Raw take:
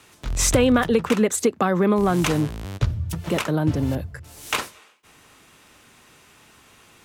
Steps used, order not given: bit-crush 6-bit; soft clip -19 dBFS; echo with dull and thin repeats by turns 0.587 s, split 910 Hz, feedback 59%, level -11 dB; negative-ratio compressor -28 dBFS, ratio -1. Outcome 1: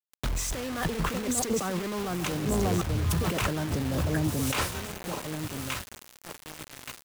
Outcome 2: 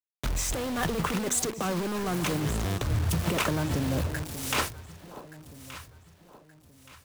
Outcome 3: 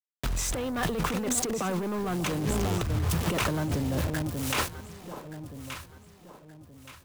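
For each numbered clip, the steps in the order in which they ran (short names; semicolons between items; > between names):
echo with dull and thin repeats by turns > negative-ratio compressor > bit-crush > soft clip; soft clip > negative-ratio compressor > bit-crush > echo with dull and thin repeats by turns; bit-crush > soft clip > echo with dull and thin repeats by turns > negative-ratio compressor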